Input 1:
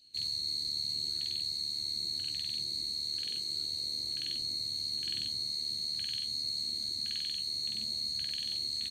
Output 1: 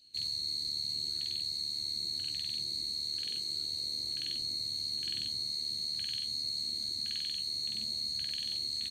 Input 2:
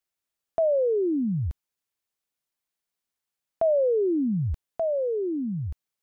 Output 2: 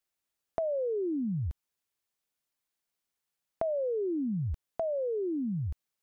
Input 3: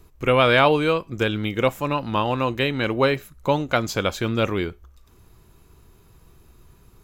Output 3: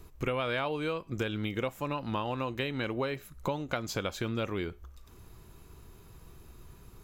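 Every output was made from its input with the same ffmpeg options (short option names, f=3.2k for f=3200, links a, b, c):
-af "acompressor=threshold=-30dB:ratio=6"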